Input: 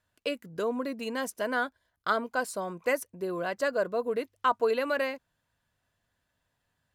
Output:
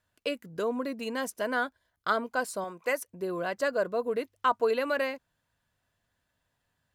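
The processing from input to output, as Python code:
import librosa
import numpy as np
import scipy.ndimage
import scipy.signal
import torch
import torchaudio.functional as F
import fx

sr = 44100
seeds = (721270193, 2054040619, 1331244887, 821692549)

y = fx.low_shelf(x, sr, hz=260.0, db=-11.5, at=(2.64, 3.08))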